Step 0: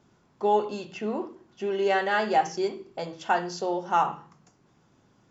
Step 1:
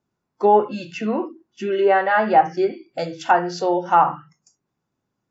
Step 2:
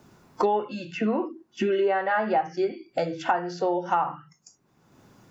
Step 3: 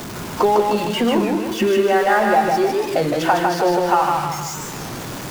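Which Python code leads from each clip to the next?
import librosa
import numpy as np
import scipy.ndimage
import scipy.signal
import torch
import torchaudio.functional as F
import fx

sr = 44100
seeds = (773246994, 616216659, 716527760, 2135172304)

y1 = fx.env_lowpass_down(x, sr, base_hz=1700.0, full_db=-21.5)
y1 = fx.noise_reduce_blind(y1, sr, reduce_db=24)
y1 = fx.notch(y1, sr, hz=3200.0, q=14.0)
y1 = y1 * 10.0 ** (8.5 / 20.0)
y2 = fx.band_squash(y1, sr, depth_pct=100)
y2 = y2 * 10.0 ** (-7.0 / 20.0)
y3 = y2 + 0.5 * 10.0 ** (-31.5 / 20.0) * np.sign(y2)
y3 = fx.echo_feedback(y3, sr, ms=154, feedback_pct=49, wet_db=-3.5)
y3 = fx.record_warp(y3, sr, rpm=33.33, depth_cents=160.0)
y3 = y3 * 10.0 ** (5.5 / 20.0)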